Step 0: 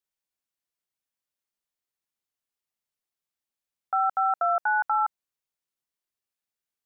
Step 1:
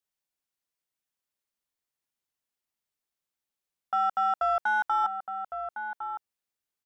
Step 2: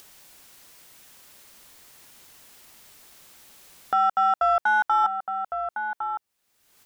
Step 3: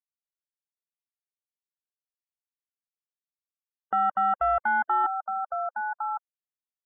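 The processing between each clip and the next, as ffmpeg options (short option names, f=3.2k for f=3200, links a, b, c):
-filter_complex "[0:a]asplit=2[a][b];[b]asoftclip=type=tanh:threshold=-28dB,volume=-6dB[c];[a][c]amix=inputs=2:normalize=0,asplit=2[d][e];[e]adelay=1108,volume=-7dB,highshelf=f=4k:g=-24.9[f];[d][f]amix=inputs=2:normalize=0,volume=-3.5dB"
-af "acompressor=mode=upward:threshold=-31dB:ratio=2.5,volume=5dB"
-af "asoftclip=type=tanh:threshold=-17dB,afftfilt=real='re*gte(hypot(re,im),0.0224)':imag='im*gte(hypot(re,im),0.0224)':win_size=1024:overlap=0.75,asuperstop=centerf=4400:order=4:qfactor=0.52"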